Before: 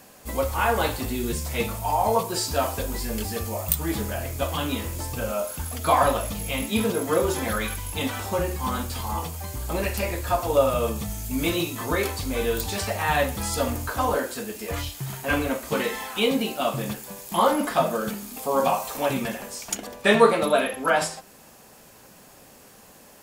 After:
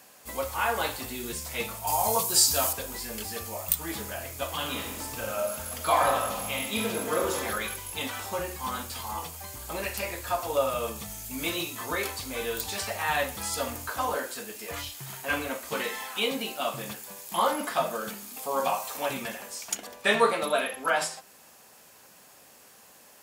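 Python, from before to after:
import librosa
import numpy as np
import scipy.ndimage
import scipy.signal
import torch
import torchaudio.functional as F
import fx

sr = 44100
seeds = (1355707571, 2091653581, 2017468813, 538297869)

y = fx.bass_treble(x, sr, bass_db=5, treble_db=12, at=(1.87, 2.73))
y = fx.reverb_throw(y, sr, start_s=4.54, length_s=2.84, rt60_s=1.3, drr_db=2.5)
y = scipy.signal.sosfilt(scipy.signal.butter(2, 54.0, 'highpass', fs=sr, output='sos'), y)
y = fx.low_shelf(y, sr, hz=480.0, db=-10.5)
y = y * librosa.db_to_amplitude(-2.0)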